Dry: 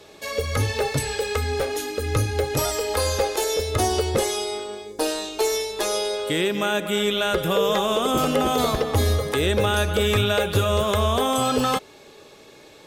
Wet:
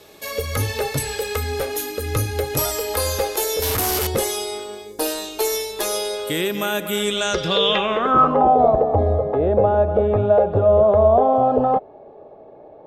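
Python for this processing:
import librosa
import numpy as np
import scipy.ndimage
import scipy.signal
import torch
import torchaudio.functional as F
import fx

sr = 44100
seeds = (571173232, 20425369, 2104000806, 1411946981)

y = fx.clip_1bit(x, sr, at=(3.62, 4.07))
y = fx.filter_sweep_lowpass(y, sr, from_hz=13000.0, to_hz=700.0, start_s=6.9, end_s=8.54, q=5.3)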